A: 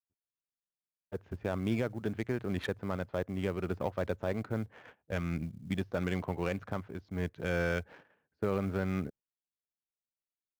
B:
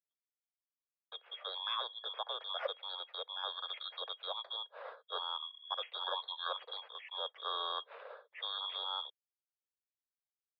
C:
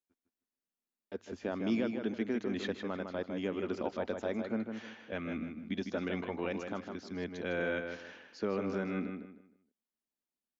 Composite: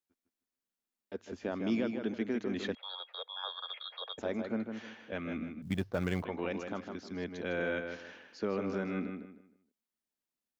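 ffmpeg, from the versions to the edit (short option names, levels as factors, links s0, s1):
-filter_complex "[2:a]asplit=3[s0][s1][s2];[s0]atrim=end=2.752[s3];[1:a]atrim=start=2.748:end=4.182[s4];[s1]atrim=start=4.178:end=5.622[s5];[0:a]atrim=start=5.618:end=6.252[s6];[s2]atrim=start=6.248[s7];[s3][s4]acrossfade=d=0.004:c1=hsin:c2=hsin[s8];[s8][s5]acrossfade=d=0.004:c1=hsin:c2=hsin[s9];[s9][s6]acrossfade=d=0.004:c1=hsin:c2=hsin[s10];[s10][s7]acrossfade=d=0.004:c1=hsin:c2=hsin"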